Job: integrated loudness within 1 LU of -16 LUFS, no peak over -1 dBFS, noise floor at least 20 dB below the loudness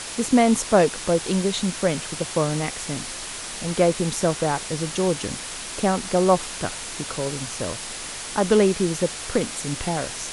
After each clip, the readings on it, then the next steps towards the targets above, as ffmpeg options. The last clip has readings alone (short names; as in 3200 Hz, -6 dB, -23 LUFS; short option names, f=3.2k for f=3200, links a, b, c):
noise floor -34 dBFS; noise floor target -44 dBFS; loudness -23.5 LUFS; peak -4.5 dBFS; loudness target -16.0 LUFS
-> -af "afftdn=nr=10:nf=-34"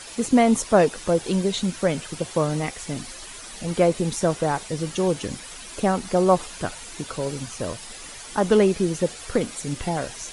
noise floor -40 dBFS; noise floor target -44 dBFS
-> -af "afftdn=nr=6:nf=-40"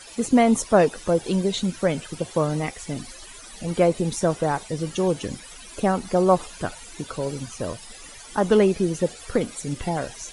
noise floor -43 dBFS; noise floor target -44 dBFS
-> -af "afftdn=nr=6:nf=-43"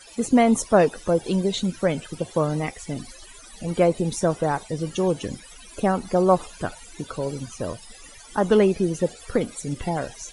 noise floor -46 dBFS; loudness -23.5 LUFS; peak -5.0 dBFS; loudness target -16.0 LUFS
-> -af "volume=7.5dB,alimiter=limit=-1dB:level=0:latency=1"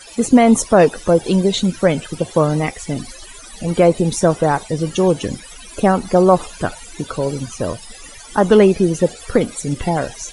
loudness -16.5 LUFS; peak -1.0 dBFS; noise floor -38 dBFS